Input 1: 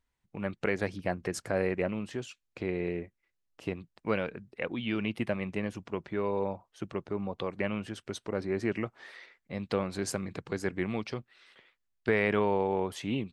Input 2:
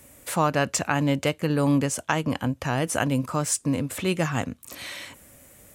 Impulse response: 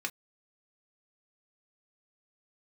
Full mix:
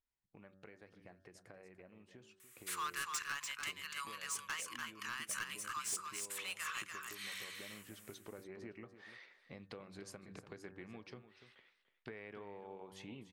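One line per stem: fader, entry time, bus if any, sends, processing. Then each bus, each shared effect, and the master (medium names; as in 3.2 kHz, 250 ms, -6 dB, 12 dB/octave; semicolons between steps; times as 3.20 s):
7.42 s -16.5 dB -> 7.82 s -9.5 dB, 0.00 s, send -10.5 dB, echo send -11 dB, de-hum 95.53 Hz, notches 19; compression 6:1, threshold -40 dBFS, peak gain reduction 17 dB
-8.5 dB, 2.40 s, no send, echo send -5 dB, elliptic high-pass 1.1 kHz; hard clipper -27 dBFS, distortion -8 dB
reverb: on, pre-delay 3 ms
echo: delay 292 ms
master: none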